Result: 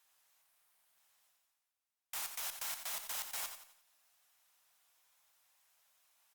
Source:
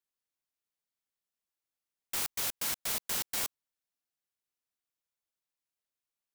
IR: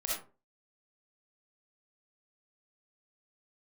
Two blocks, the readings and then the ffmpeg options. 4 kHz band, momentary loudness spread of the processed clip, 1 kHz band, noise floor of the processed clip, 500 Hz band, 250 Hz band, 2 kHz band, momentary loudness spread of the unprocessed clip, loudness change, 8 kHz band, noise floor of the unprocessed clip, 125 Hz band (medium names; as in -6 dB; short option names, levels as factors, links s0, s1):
-7.0 dB, 6 LU, -4.5 dB, under -85 dBFS, -10.5 dB, under -20 dB, -6.0 dB, 4 LU, -7.0 dB, -6.5 dB, under -85 dBFS, under -15 dB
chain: -af "aeval=exprs='if(lt(val(0),0),0.708*val(0),val(0))':c=same,lowshelf=f=520:t=q:w=1.5:g=-11.5,areverse,acompressor=mode=upward:threshold=0.00158:ratio=2.5,areverse,alimiter=level_in=1.78:limit=0.0631:level=0:latency=1:release=87,volume=0.562,bandreject=f=4500:w=20,aecho=1:1:88|176|264|352:0.376|0.15|0.0601|0.0241" -ar 48000 -c:a libopus -b:a 48k